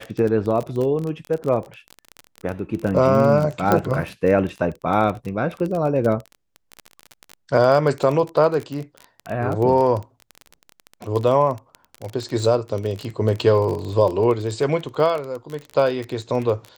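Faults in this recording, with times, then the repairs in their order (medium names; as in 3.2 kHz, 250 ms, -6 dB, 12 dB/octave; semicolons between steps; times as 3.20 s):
crackle 26 per s -24 dBFS
3.72 s: pop -5 dBFS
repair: de-click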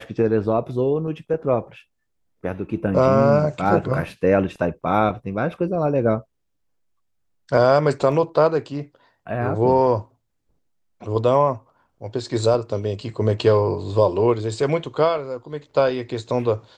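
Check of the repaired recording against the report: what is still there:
nothing left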